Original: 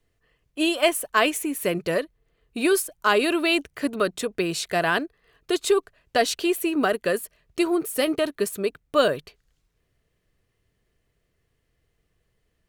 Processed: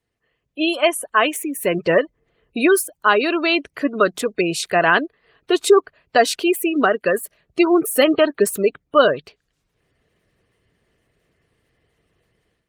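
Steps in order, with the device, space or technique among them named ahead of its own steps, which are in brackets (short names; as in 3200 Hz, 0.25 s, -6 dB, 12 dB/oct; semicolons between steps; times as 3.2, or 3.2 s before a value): dynamic EQ 1200 Hz, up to +3 dB, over -33 dBFS, Q 0.88; noise-suppressed video call (HPF 140 Hz 6 dB/oct; spectral gate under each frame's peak -25 dB strong; AGC gain up to 12 dB; gain -1 dB; Opus 24 kbps 48000 Hz)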